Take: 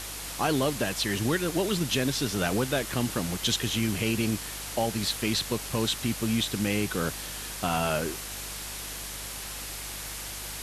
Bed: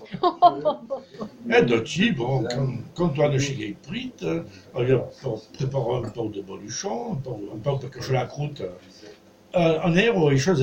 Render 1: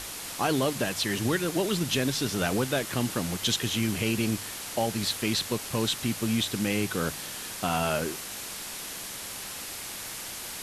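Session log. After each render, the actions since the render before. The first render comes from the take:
hum removal 50 Hz, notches 3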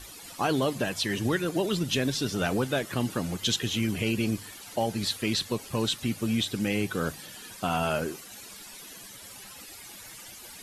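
broadband denoise 14 dB, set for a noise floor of −39 dBFS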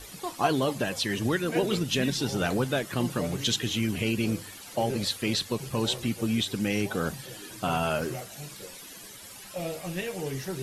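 mix in bed −14.5 dB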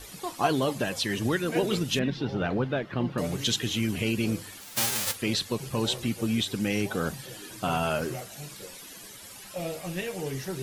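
0:01.99–0:03.18: high-frequency loss of the air 310 metres
0:04.60–0:05.14: spectral envelope flattened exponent 0.1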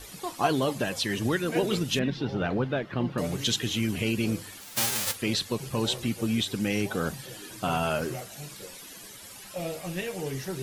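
no processing that can be heard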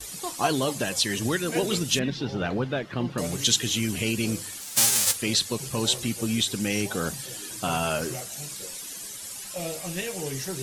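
noise gate with hold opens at −37 dBFS
parametric band 8,000 Hz +10.5 dB 1.7 octaves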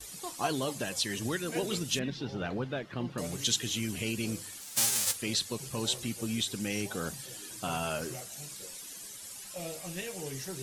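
level −7 dB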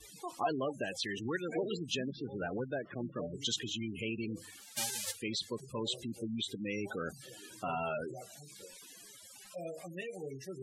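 gate on every frequency bin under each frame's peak −15 dB strong
bass and treble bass −7 dB, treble −10 dB

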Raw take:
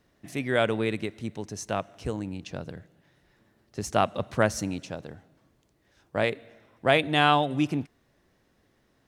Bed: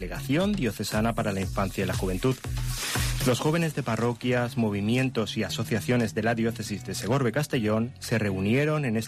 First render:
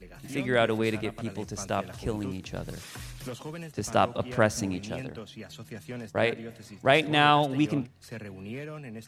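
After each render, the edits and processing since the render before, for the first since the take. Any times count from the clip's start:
mix in bed −14.5 dB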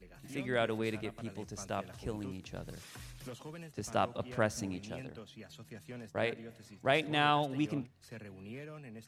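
level −8 dB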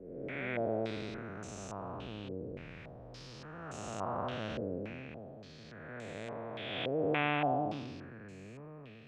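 spectrum smeared in time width 551 ms
low-pass on a step sequencer 3.5 Hz 470–7,300 Hz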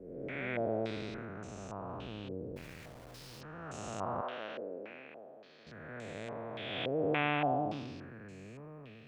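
0:01.25–0:01.89: high-shelf EQ 3,500 Hz −8 dB
0:02.56–0:03.41: centre clipping without the shift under −49.5 dBFS
0:04.21–0:05.67: band-pass filter 440–3,100 Hz

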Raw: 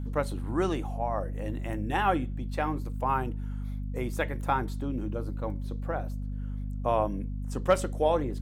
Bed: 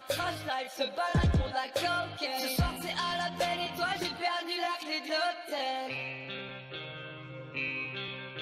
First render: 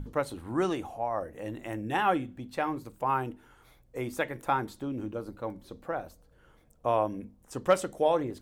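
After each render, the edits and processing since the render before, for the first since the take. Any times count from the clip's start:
mains-hum notches 50/100/150/200/250 Hz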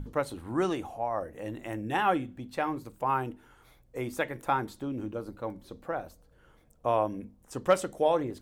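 no processing that can be heard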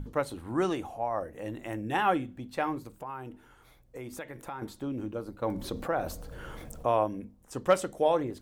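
0:02.87–0:04.62: downward compressor 3 to 1, threshold −39 dBFS
0:05.42–0:07.04: envelope flattener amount 50%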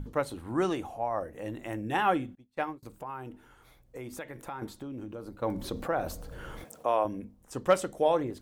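0:02.35–0:02.83: expander for the loud parts 2.5 to 1, over −46 dBFS
0:04.74–0:05.38: downward compressor, threshold −36 dBFS
0:06.64–0:07.05: Bessel high-pass filter 350 Hz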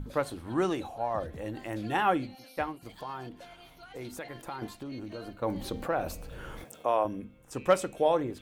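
mix in bed −19.5 dB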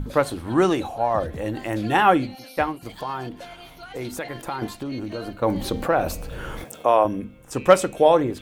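level +9.5 dB

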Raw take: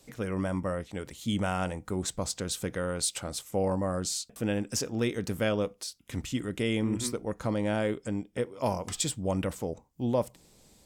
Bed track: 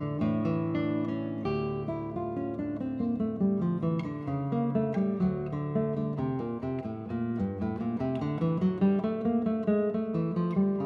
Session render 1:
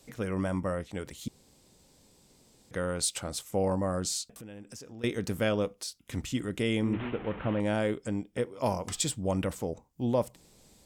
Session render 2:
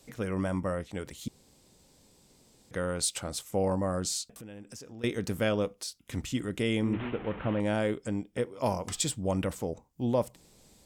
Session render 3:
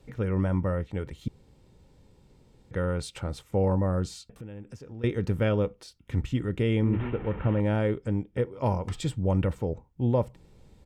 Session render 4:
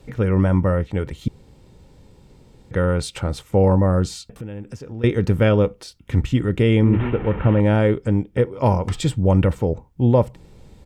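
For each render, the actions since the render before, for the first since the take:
0:01.28–0:02.71: fill with room tone; 0:04.28–0:05.04: downward compressor 4 to 1, threshold −45 dBFS; 0:06.93–0:07.60: linear delta modulator 16 kbit/s, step −35.5 dBFS
no processing that can be heard
bass and treble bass +9 dB, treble −15 dB; comb filter 2.2 ms, depth 32%
level +9 dB

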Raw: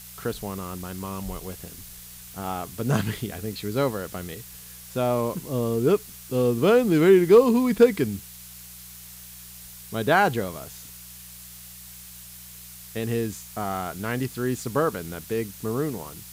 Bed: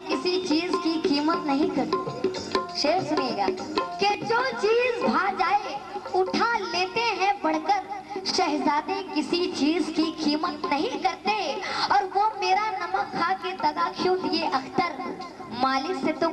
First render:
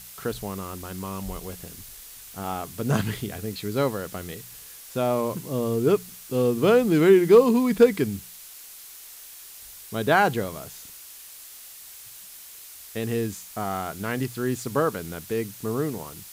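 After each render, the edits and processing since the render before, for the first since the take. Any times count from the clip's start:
hum removal 60 Hz, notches 3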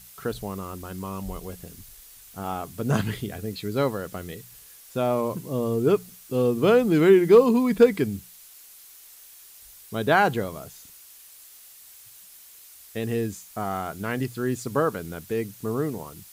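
broadband denoise 6 dB, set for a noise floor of −44 dBFS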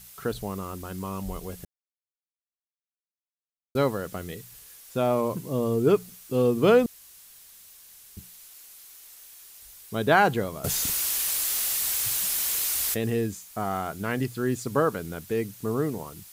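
0:01.65–0:03.75: silence
0:06.86–0:08.17: fill with room tone
0:10.64–0:13.10: envelope flattener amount 100%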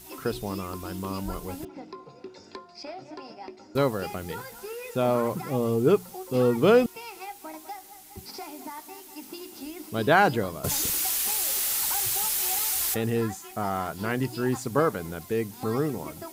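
mix in bed −16.5 dB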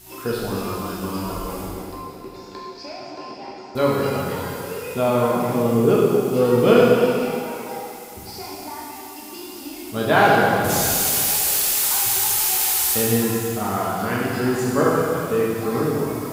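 dense smooth reverb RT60 2.5 s, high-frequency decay 0.95×, DRR −6 dB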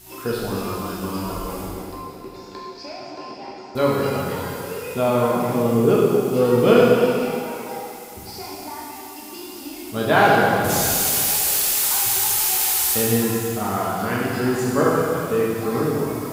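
no processing that can be heard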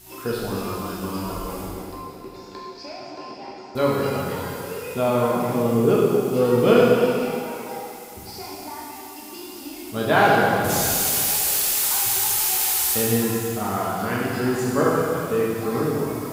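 level −1.5 dB

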